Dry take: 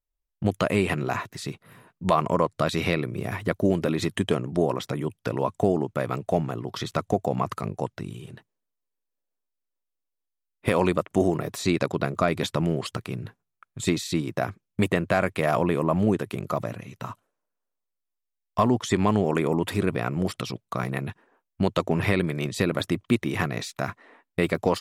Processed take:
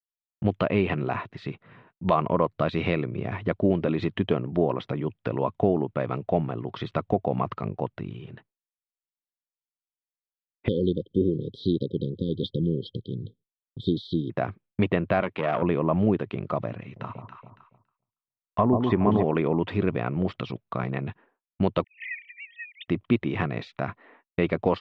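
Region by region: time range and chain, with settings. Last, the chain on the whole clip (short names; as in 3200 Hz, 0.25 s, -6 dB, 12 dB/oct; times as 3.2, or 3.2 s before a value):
10.68–14.3 brick-wall FIR band-stop 540–3100 Hz + high shelf 3100 Hz +7 dB + fixed phaser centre 3000 Hz, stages 4
15.2–15.62 HPF 160 Hz + core saturation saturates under 1000 Hz
16.82–19.23 treble ducked by the level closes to 1300 Hz, closed at -17.5 dBFS + echo with dull and thin repeats by turns 0.14 s, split 900 Hz, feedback 62%, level -4 dB
21.84–22.88 sine-wave speech + brick-wall FIR high-pass 1800 Hz + air absorption 220 m
whole clip: LPF 3200 Hz 24 dB/oct; expander -50 dBFS; dynamic EQ 1700 Hz, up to -4 dB, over -43 dBFS, Q 1.3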